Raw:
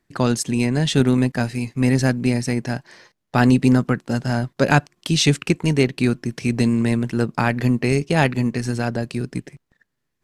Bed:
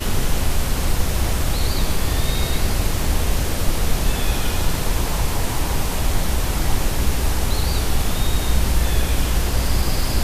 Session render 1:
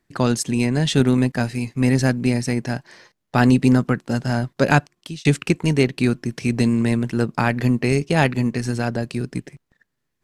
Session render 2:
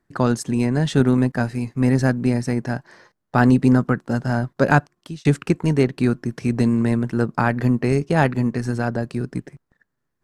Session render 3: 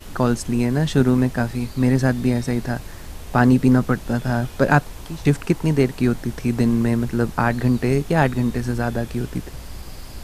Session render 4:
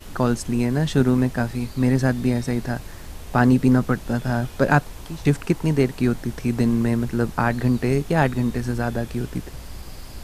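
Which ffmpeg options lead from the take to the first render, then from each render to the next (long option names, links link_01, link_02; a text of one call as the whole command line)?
ffmpeg -i in.wav -filter_complex "[0:a]asplit=2[link_01][link_02];[link_01]atrim=end=5.25,asetpts=PTS-STARTPTS,afade=type=out:start_time=4.75:duration=0.5[link_03];[link_02]atrim=start=5.25,asetpts=PTS-STARTPTS,afade=type=in:duration=0.004:curve=hsin[link_04];[link_03][link_04]concat=n=2:v=0:a=1" out.wav
ffmpeg -i in.wav -af "highshelf=frequency=1900:width_type=q:width=1.5:gain=-6" out.wav
ffmpeg -i in.wav -i bed.wav -filter_complex "[1:a]volume=-16dB[link_01];[0:a][link_01]amix=inputs=2:normalize=0" out.wav
ffmpeg -i in.wav -af "volume=-1.5dB" out.wav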